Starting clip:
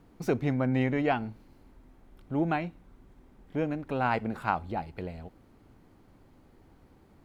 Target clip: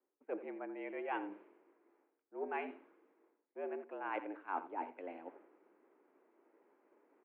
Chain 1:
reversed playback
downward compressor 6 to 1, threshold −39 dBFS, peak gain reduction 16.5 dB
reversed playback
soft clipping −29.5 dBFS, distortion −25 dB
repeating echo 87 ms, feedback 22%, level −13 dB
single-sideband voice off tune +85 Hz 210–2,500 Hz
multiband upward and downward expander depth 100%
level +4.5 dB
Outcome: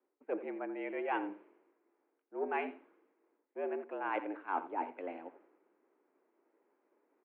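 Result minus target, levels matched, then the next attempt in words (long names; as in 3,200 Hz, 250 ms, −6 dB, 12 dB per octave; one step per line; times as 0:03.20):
downward compressor: peak gain reduction −5 dB
reversed playback
downward compressor 6 to 1, threshold −45 dBFS, peak gain reduction 21.5 dB
reversed playback
soft clipping −29.5 dBFS, distortion −34 dB
repeating echo 87 ms, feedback 22%, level −13 dB
single-sideband voice off tune +85 Hz 210–2,500 Hz
multiband upward and downward expander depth 100%
level +4.5 dB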